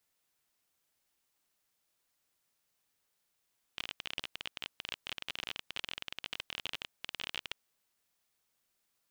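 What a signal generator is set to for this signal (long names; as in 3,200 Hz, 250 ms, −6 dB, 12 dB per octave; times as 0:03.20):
Geiger counter clicks 28 per second −20.5 dBFS 3.82 s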